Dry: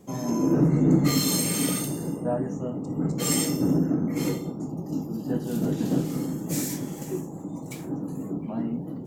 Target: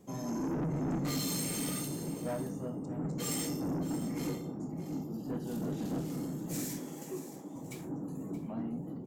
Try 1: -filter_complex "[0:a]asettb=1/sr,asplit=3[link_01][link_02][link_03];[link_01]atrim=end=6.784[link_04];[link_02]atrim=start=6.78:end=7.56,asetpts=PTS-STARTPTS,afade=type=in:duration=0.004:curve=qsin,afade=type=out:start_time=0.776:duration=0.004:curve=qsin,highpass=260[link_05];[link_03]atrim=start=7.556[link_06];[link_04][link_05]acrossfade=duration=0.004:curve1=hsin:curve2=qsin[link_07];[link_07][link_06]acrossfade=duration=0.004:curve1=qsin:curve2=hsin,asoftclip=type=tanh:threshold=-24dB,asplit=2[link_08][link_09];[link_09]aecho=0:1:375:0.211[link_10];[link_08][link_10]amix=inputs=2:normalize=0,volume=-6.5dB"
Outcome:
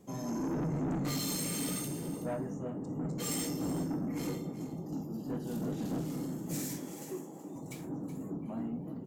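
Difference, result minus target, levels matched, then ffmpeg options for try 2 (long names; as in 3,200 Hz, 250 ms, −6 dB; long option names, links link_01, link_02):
echo 250 ms early
-filter_complex "[0:a]asettb=1/sr,asplit=3[link_01][link_02][link_03];[link_01]atrim=end=6.784[link_04];[link_02]atrim=start=6.78:end=7.56,asetpts=PTS-STARTPTS,afade=type=in:duration=0.004:curve=qsin,afade=type=out:start_time=0.776:duration=0.004:curve=qsin,highpass=260[link_05];[link_03]atrim=start=7.556[link_06];[link_04][link_05]acrossfade=duration=0.004:curve1=hsin:curve2=qsin[link_07];[link_07][link_06]acrossfade=duration=0.004:curve1=qsin:curve2=hsin,asoftclip=type=tanh:threshold=-24dB,asplit=2[link_08][link_09];[link_09]aecho=0:1:625:0.211[link_10];[link_08][link_10]amix=inputs=2:normalize=0,volume=-6.5dB"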